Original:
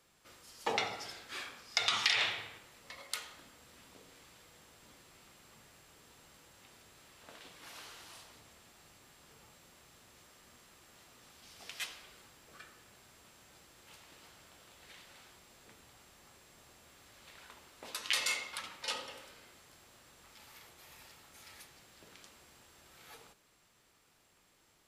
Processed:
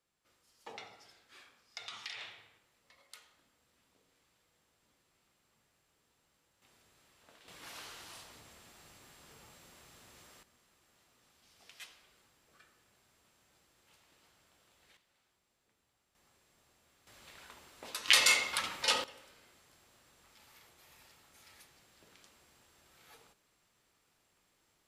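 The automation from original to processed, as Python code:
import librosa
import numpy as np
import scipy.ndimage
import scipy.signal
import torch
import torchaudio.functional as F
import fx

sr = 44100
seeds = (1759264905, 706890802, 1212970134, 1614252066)

y = fx.gain(x, sr, db=fx.steps((0.0, -15.0), (6.62, -8.0), (7.48, 2.0), (10.43, -10.0), (14.97, -19.0), (16.15, -10.0), (17.07, 0.5), (18.08, 8.0), (19.04, -5.0)))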